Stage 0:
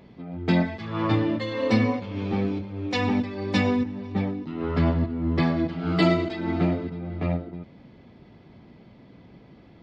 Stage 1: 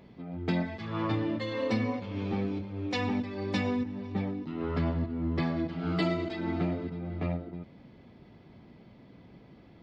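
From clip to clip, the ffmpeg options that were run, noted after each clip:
ffmpeg -i in.wav -af "acompressor=threshold=-25dB:ratio=2,volume=-3.5dB" out.wav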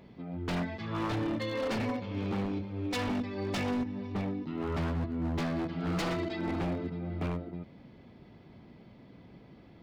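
ffmpeg -i in.wav -af "aeval=exprs='0.0473*(abs(mod(val(0)/0.0473+3,4)-2)-1)':channel_layout=same" out.wav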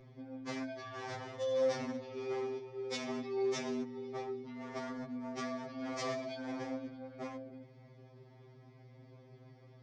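ffmpeg -i in.wav -af "highpass=190,equalizer=frequency=250:width_type=q:width=4:gain=-8,equalizer=frequency=900:width_type=q:width=4:gain=-4,equalizer=frequency=1500:width_type=q:width=4:gain=-6,equalizer=frequency=2800:width_type=q:width=4:gain=-10,equalizer=frequency=4000:width_type=q:width=4:gain=-6,equalizer=frequency=5700:width_type=q:width=4:gain=6,lowpass=frequency=7100:width=0.5412,lowpass=frequency=7100:width=1.3066,aeval=exprs='val(0)+0.00178*(sin(2*PI*60*n/s)+sin(2*PI*2*60*n/s)/2+sin(2*PI*3*60*n/s)/3+sin(2*PI*4*60*n/s)/4+sin(2*PI*5*60*n/s)/5)':channel_layout=same,afftfilt=real='re*2.45*eq(mod(b,6),0)':imag='im*2.45*eq(mod(b,6),0)':win_size=2048:overlap=0.75,volume=1dB" out.wav

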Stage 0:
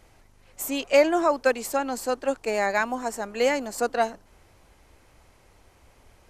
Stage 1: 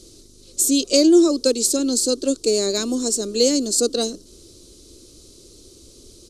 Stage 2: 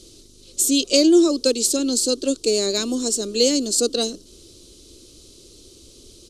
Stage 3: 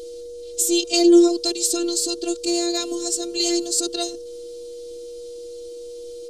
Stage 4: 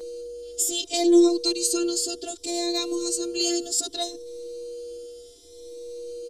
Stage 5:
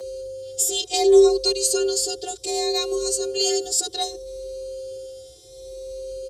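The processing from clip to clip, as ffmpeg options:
ffmpeg -i in.wav -filter_complex "[0:a]firequalizer=gain_entry='entry(140,0);entry(350,13);entry(820,-22);entry(1200,-10);entry(1800,-20);entry(3900,14);entry(5900,14);entry(9400,13);entry(15000,-6)':delay=0.05:min_phase=1,asplit=2[link_01][link_02];[link_02]acompressor=threshold=-26dB:ratio=6,volume=-0.5dB[link_03];[link_01][link_03]amix=inputs=2:normalize=0" out.wav
ffmpeg -i in.wav -af "equalizer=frequency=3000:width=1.9:gain=6.5,volume=-1dB" out.wav
ffmpeg -i in.wav -af "afftfilt=real='hypot(re,im)*cos(PI*b)':imag='0':win_size=512:overlap=0.75,aeval=exprs='val(0)+0.0178*sin(2*PI*480*n/s)':channel_layout=same,volume=2dB" out.wav
ffmpeg -i in.wav -filter_complex "[0:a]asplit=2[link_01][link_02];[link_02]adelay=6.2,afreqshift=0.66[link_03];[link_01][link_03]amix=inputs=2:normalize=1" out.wav
ffmpeg -i in.wav -af "afreqshift=46,volume=3dB" out.wav

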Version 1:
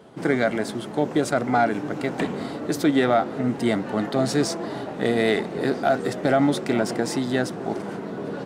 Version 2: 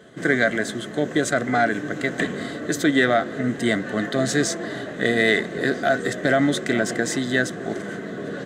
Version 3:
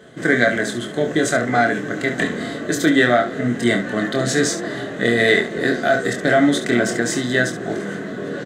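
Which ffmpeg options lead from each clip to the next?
ffmpeg -i in.wav -af "superequalizer=9b=0.316:11b=2.82:13b=1.78:15b=2.24" out.wav
ffmpeg -i in.wav -af "aecho=1:1:25|70:0.562|0.299,volume=2dB" out.wav

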